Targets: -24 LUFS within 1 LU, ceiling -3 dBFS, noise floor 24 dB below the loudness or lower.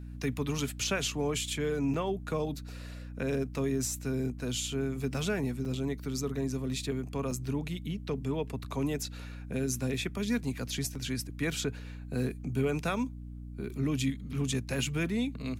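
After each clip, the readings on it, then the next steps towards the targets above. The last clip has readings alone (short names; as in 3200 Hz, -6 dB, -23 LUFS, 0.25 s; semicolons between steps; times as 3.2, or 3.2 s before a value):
dropouts 5; longest dropout 4.2 ms; hum 60 Hz; harmonics up to 300 Hz; hum level -40 dBFS; loudness -33.0 LUFS; peak -17.5 dBFS; loudness target -24.0 LUFS
-> interpolate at 1.94/5.14/5.65/7.31/10.95, 4.2 ms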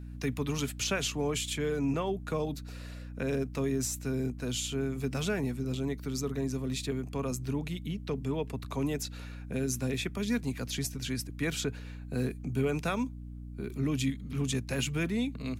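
dropouts 0; hum 60 Hz; harmonics up to 300 Hz; hum level -40 dBFS
-> de-hum 60 Hz, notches 5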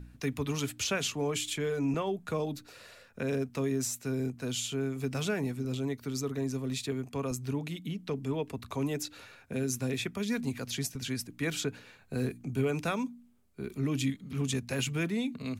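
hum none; loudness -33.5 LUFS; peak -18.0 dBFS; loudness target -24.0 LUFS
-> gain +9.5 dB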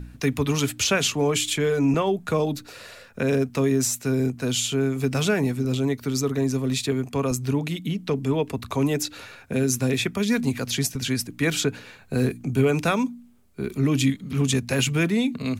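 loudness -24.0 LUFS; peak -8.5 dBFS; noise floor -48 dBFS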